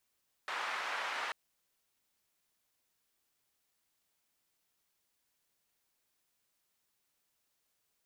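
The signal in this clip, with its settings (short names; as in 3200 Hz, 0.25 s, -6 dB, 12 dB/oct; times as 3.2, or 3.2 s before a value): noise band 1000–1500 Hz, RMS -38 dBFS 0.84 s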